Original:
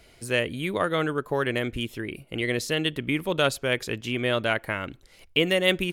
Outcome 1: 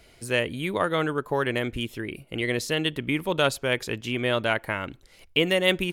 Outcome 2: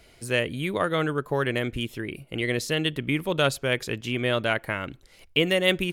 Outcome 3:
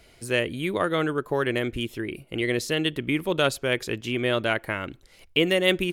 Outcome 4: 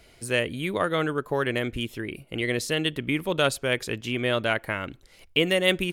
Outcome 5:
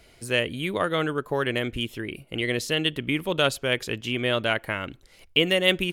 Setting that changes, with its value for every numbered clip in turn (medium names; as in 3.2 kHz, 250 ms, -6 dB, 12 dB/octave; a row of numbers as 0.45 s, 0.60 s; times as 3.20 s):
dynamic bell, frequency: 910 Hz, 140 Hz, 350 Hz, 8.8 kHz, 3 kHz